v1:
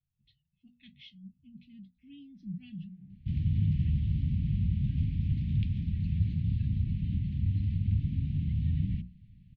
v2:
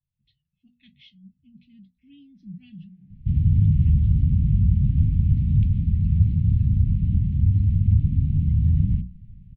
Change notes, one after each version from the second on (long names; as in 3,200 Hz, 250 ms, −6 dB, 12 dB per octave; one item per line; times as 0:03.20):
second sound: add spectral tilt −3 dB per octave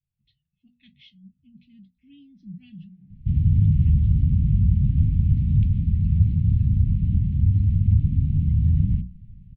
first sound −3.0 dB